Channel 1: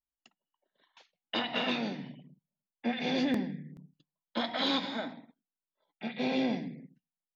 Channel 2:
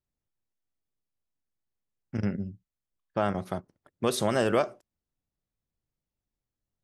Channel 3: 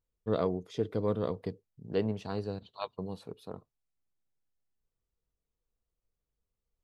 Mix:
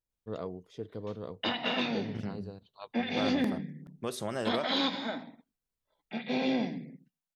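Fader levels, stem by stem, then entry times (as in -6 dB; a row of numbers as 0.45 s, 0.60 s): +0.5 dB, -9.0 dB, -8.5 dB; 0.10 s, 0.00 s, 0.00 s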